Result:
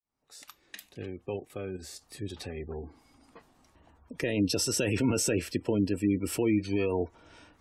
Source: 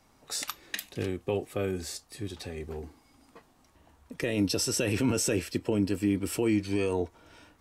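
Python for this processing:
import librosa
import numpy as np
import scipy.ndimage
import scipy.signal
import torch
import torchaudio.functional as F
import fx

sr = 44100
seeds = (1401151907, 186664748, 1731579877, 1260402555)

y = fx.fade_in_head(x, sr, length_s=2.39)
y = fx.spec_gate(y, sr, threshold_db=-30, keep='strong')
y = fx.level_steps(y, sr, step_db=9, at=(1.36, 2.02))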